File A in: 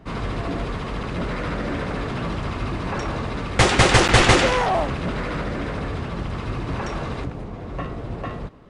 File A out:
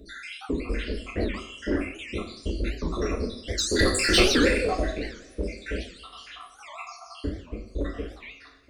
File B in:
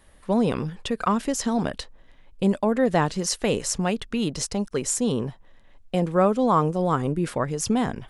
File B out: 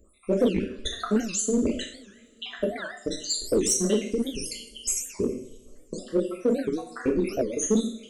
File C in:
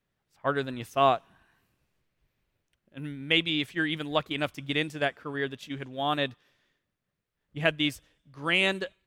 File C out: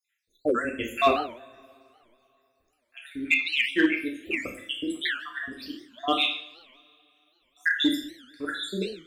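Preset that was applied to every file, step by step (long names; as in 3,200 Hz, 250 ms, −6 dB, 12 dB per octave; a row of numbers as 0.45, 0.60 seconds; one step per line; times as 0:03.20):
time-frequency cells dropped at random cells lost 83%
phaser with its sweep stopped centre 360 Hz, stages 4
coupled-rooms reverb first 0.55 s, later 3 s, from −26 dB, DRR −2 dB
in parallel at −4 dB: gain into a clipping stage and back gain 24.5 dB
on the sum: wow of a warped record 78 rpm, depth 250 cents
loudness normalisation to −27 LKFS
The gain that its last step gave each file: −1.5, +1.0, +4.0 decibels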